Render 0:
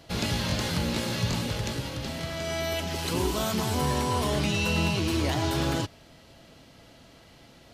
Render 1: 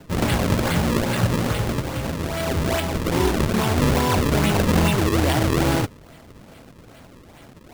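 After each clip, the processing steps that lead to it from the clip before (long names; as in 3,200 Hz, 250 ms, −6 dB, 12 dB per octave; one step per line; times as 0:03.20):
sample-and-hold swept by an LFO 34×, swing 160% 2.4 Hz
level +7.5 dB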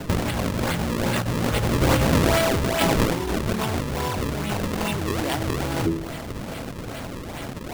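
hum removal 82.19 Hz, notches 5
compressor whose output falls as the input rises −29 dBFS, ratio −1
level +5.5 dB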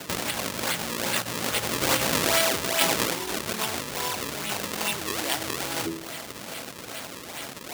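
high-pass filter 420 Hz 6 dB per octave
high-shelf EQ 2,300 Hz +10 dB
level −4 dB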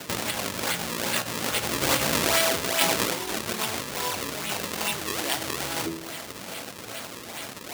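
flanger 0.28 Hz, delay 8.3 ms, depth 6.5 ms, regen +76%
level +4.5 dB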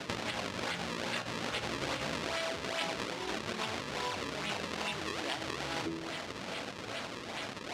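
low-pass filter 4,600 Hz 12 dB per octave
downward compressor, threshold −30 dBFS, peak gain reduction 11 dB
level −1.5 dB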